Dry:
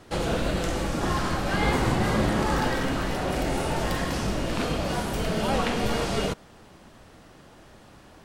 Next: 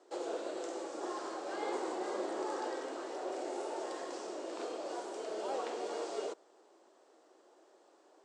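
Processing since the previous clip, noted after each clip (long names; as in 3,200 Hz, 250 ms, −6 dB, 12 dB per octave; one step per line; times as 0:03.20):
Chebyshev band-pass filter 350–7,900 Hz, order 4
parametric band 2,500 Hz −14 dB 2.6 octaves
level −5.5 dB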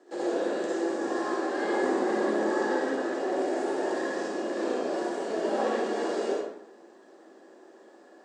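hollow resonant body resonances 210/1,700 Hz, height 15 dB, ringing for 25 ms
convolution reverb RT60 0.80 s, pre-delay 53 ms, DRR −5.5 dB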